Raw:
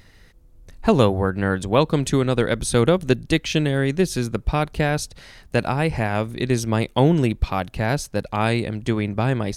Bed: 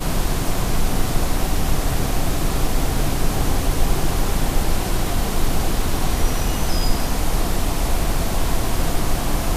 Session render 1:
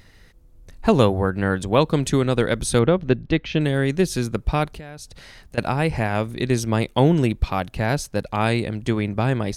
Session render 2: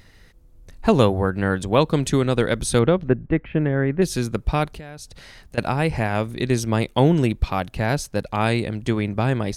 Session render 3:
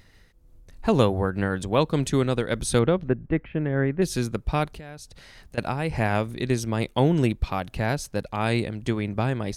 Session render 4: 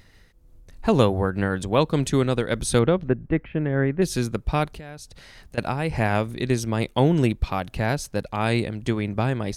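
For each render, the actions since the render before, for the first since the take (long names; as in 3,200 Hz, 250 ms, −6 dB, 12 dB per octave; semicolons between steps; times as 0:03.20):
0:02.79–0:03.61: high-frequency loss of the air 250 metres; 0:04.71–0:05.58: downward compressor, threshold −34 dBFS
0:03.08–0:04.02: low-pass filter 2,000 Hz 24 dB per octave
amplitude modulation by smooth noise, depth 65%
level +1.5 dB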